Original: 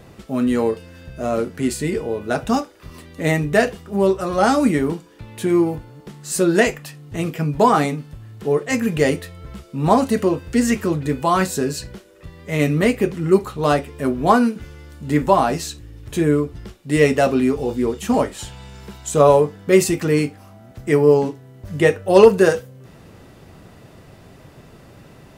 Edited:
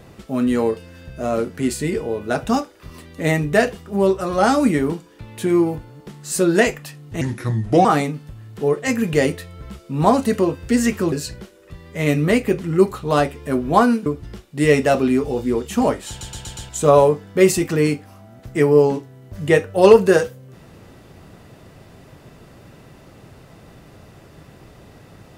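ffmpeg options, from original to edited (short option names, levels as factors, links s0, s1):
-filter_complex "[0:a]asplit=10[s0][s1][s2][s3][s4][s5][s6][s7][s8][s9];[s0]atrim=end=7.214[s10];[s1]atrim=start=7.21:end=7.69,asetpts=PTS-STARTPTS,asetrate=33075,aresample=44100[s11];[s2]atrim=start=7.686:end=10.962[s12];[s3]atrim=start=11.648:end=14.592[s13];[s4]atrim=start=16.378:end=18.532[s14];[s5]atrim=start=18.408:end=18.532[s15];[s6]atrim=start=18.408:end=18.532[s16];[s7]atrim=start=18.408:end=18.532[s17];[s8]atrim=start=18.408:end=18.532[s18];[s9]atrim=start=19.008[s19];[s10][s11]acrossfade=d=0.004:c1=hsin:c2=hsin[s20];[s20][s12]acrossfade=d=0.004:c1=hsin:c2=hsin[s21];[s21][s13]acrossfade=d=0.004:c1=hsin:c2=hsin[s22];[s22][s14]acrossfade=d=0.004:c1=hsin:c2=hsin[s23];[s23][s15]acrossfade=d=0.004:c1=hsin:c2=hsin[s24];[s24][s16]acrossfade=d=0.004:c1=hsin:c2=hsin[s25];[s25][s17]acrossfade=d=0.004:c1=hsin:c2=hsin[s26];[s26][s18]acrossfade=d=0.004:c1=hsin:c2=hsin[s27];[s27][s19]acrossfade=d=0.004:c1=hsin:c2=hsin"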